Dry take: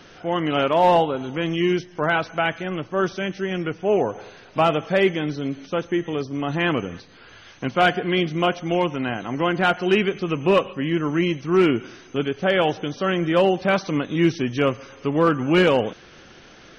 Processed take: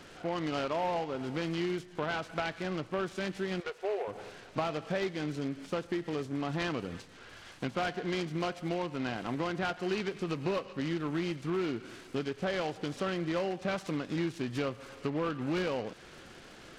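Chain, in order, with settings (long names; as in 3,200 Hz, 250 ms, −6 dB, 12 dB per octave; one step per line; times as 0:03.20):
downward compressor 5 to 1, threshold −26 dBFS, peak gain reduction 12.5 dB
0:03.60–0:04.08: linear-phase brick-wall high-pass 360 Hz
short delay modulated by noise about 1,400 Hz, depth 0.041 ms
level −4.5 dB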